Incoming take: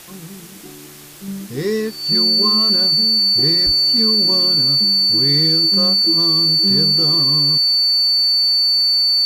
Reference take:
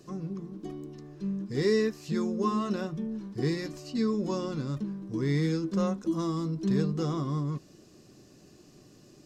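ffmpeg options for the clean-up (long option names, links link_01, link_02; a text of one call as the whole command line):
ffmpeg -i in.wav -filter_complex "[0:a]bandreject=frequency=4500:width=30,asplit=3[link_01][link_02][link_03];[link_01]afade=type=out:start_time=3.65:duration=0.02[link_04];[link_02]highpass=frequency=140:width=0.5412,highpass=frequency=140:width=1.3066,afade=type=in:start_time=3.65:duration=0.02,afade=type=out:start_time=3.77:duration=0.02[link_05];[link_03]afade=type=in:start_time=3.77:duration=0.02[link_06];[link_04][link_05][link_06]amix=inputs=3:normalize=0,afwtdn=0.011,asetnsamples=nb_out_samples=441:pad=0,asendcmd='1.28 volume volume -5dB',volume=0dB" out.wav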